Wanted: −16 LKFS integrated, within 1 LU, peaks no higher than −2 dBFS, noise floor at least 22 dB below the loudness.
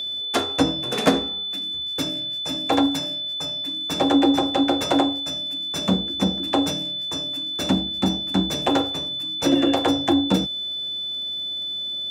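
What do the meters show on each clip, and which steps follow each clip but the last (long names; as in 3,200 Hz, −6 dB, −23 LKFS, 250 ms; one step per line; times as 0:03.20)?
crackle rate 28 per second; interfering tone 3,500 Hz; level of the tone −26 dBFS; integrated loudness −22.5 LKFS; sample peak −5.0 dBFS; target loudness −16.0 LKFS
→ click removal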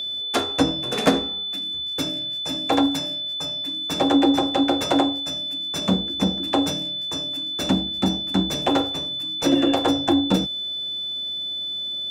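crackle rate 0.33 per second; interfering tone 3,500 Hz; level of the tone −26 dBFS
→ notch filter 3,500 Hz, Q 30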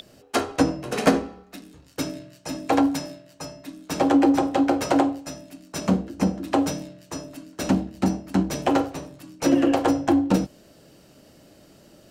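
interfering tone none found; integrated loudness −23.5 LKFS; sample peak −5.0 dBFS; target loudness −16.0 LKFS
→ level +7.5 dB
brickwall limiter −2 dBFS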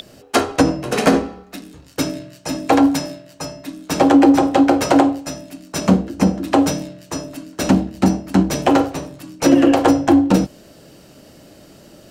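integrated loudness −16.5 LKFS; sample peak −2.0 dBFS; background noise floor −46 dBFS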